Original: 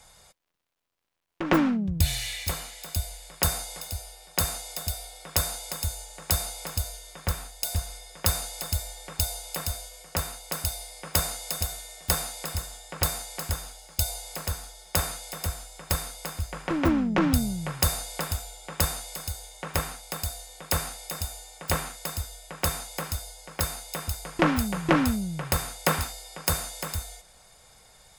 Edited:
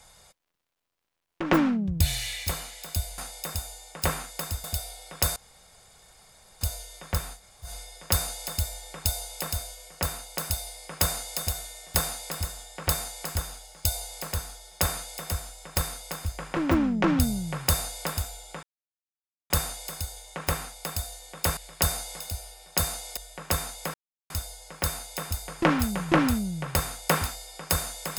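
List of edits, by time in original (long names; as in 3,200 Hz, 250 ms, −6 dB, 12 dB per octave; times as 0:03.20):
0:03.18–0:04.78: swap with 0:20.84–0:22.30
0:05.50–0:06.75: fill with room tone
0:07.52–0:07.81: fill with room tone, crossfade 0.10 s
0:18.77: splice in silence 0.87 s
0:23.07: splice in silence 0.36 s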